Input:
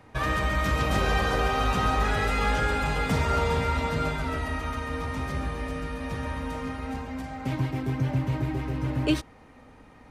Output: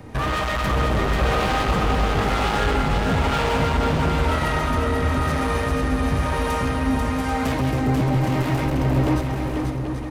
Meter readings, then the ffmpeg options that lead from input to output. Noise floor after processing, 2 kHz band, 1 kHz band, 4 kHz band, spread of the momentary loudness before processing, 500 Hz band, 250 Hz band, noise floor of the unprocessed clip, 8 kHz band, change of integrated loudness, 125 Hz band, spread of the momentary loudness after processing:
−25 dBFS, +4.0 dB, +5.5 dB, +5.5 dB, 9 LU, +7.0 dB, +7.5 dB, −52 dBFS, +5.5 dB, +6.0 dB, +6.5 dB, 3 LU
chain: -filter_complex "[0:a]highshelf=frequency=4400:gain=7.5,acrossover=split=1500[link_01][link_02];[link_02]acompressor=threshold=-45dB:ratio=6[link_03];[link_01][link_03]amix=inputs=2:normalize=0,asoftclip=type=hard:threshold=-28dB,acrossover=split=530[link_04][link_05];[link_04]aeval=exprs='val(0)*(1-0.7/2+0.7/2*cos(2*PI*1*n/s))':channel_layout=same[link_06];[link_05]aeval=exprs='val(0)*(1-0.7/2-0.7/2*cos(2*PI*1*n/s))':channel_layout=same[link_07];[link_06][link_07]amix=inputs=2:normalize=0,aeval=exprs='0.0794*sin(PI/2*2.51*val(0)/0.0794)':channel_layout=same,asplit=2[link_08][link_09];[link_09]aecho=0:1:490|784|960.4|1066|1130:0.631|0.398|0.251|0.158|0.1[link_10];[link_08][link_10]amix=inputs=2:normalize=0,volume=3dB"

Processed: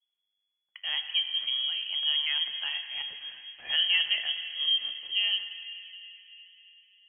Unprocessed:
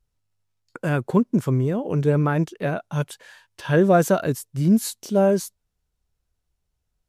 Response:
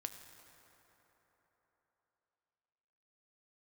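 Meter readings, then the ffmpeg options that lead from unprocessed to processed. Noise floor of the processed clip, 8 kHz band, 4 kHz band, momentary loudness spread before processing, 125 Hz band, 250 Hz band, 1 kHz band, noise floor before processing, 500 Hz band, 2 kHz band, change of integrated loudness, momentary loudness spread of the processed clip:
−83 dBFS, below −40 dB, +18.5 dB, 11 LU, below −40 dB, below −40 dB, −24.0 dB, −77 dBFS, below −35 dB, −0.5 dB, −5.5 dB, 16 LU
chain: -filter_complex "[1:a]atrim=start_sample=2205,asetrate=42777,aresample=44100[link_01];[0:a][link_01]afir=irnorm=-1:irlink=0,adynamicequalizer=threshold=0.00891:dfrequency=2500:dqfactor=1:tfrequency=2500:tqfactor=1:attack=5:release=100:ratio=0.375:range=1.5:mode=boostabove:tftype=bell,lowpass=frequency=2900:width_type=q:width=0.5098,lowpass=frequency=2900:width_type=q:width=0.6013,lowpass=frequency=2900:width_type=q:width=0.9,lowpass=frequency=2900:width_type=q:width=2.563,afreqshift=-3400,volume=-6.5dB"

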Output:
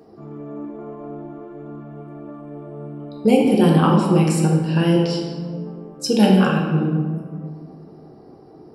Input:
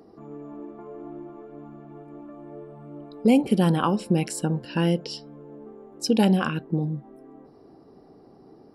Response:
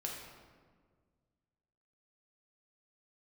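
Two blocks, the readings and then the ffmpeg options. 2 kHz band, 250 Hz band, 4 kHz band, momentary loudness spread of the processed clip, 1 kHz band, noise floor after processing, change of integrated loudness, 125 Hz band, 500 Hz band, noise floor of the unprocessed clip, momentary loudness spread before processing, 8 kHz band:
+5.5 dB, +6.0 dB, +5.0 dB, 21 LU, +6.0 dB, −45 dBFS, +6.0 dB, +8.0 dB, +7.0 dB, −52 dBFS, 22 LU, +4.0 dB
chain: -filter_complex "[1:a]atrim=start_sample=2205[link_01];[0:a][link_01]afir=irnorm=-1:irlink=0,volume=5.5dB"

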